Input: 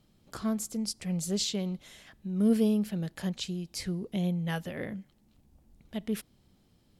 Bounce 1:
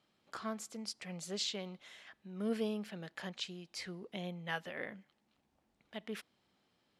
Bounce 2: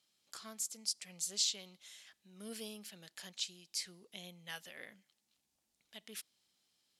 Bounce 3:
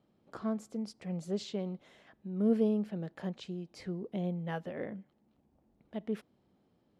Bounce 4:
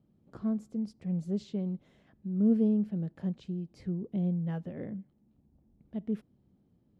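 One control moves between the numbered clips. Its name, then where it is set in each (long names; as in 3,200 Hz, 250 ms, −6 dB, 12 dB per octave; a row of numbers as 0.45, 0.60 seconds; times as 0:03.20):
resonant band-pass, frequency: 1,600, 6,300, 550, 200 Hertz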